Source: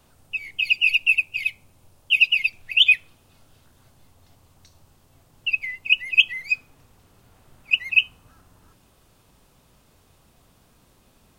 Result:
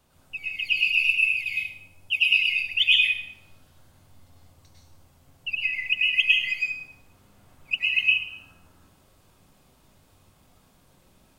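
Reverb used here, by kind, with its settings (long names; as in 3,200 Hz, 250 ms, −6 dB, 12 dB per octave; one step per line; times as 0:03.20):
dense smooth reverb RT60 0.7 s, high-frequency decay 0.85×, pre-delay 90 ms, DRR −4.5 dB
level −7 dB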